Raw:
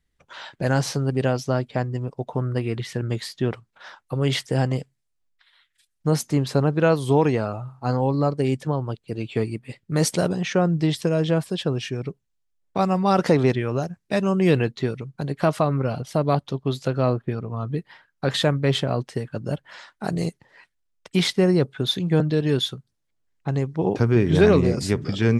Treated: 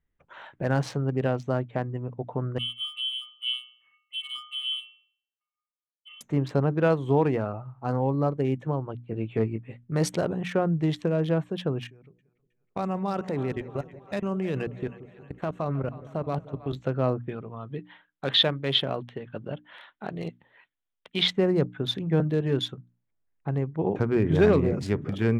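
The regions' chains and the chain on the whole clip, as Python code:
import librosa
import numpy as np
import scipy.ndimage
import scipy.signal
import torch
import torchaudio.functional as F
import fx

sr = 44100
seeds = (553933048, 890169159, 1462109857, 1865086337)

y = fx.chain(x, sr, fx.leveller(passes=3),
    fx.octave_resonator(note='B', decay_s=0.54),
    fx.freq_invert(carrier_hz=3200), at=(2.58, 6.21))
y = fx.chain(y, sr, fx.high_shelf(hz=7600.0, db=-11.5),
    fx.doubler(ms=18.0, db=-7), at=(9.05, 9.77))
y = fx.chain(y, sr, fx.high_shelf(hz=4200.0, db=11.5),
    fx.level_steps(step_db=24),
    fx.echo_split(split_hz=590.0, low_ms=179, high_ms=316, feedback_pct=52, wet_db=-15), at=(11.87, 16.73))
y = fx.chain(y, sr, fx.low_shelf(hz=140.0, db=-8.5),
    fx.tremolo_shape(shape='triangle', hz=2.0, depth_pct=35),
    fx.lowpass_res(hz=3500.0, q=4.5), at=(17.26, 21.28))
y = fx.wiener(y, sr, points=9)
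y = fx.high_shelf(y, sr, hz=5800.0, db=-7.5)
y = fx.hum_notches(y, sr, base_hz=60, count=5)
y = y * librosa.db_to_amplitude(-3.5)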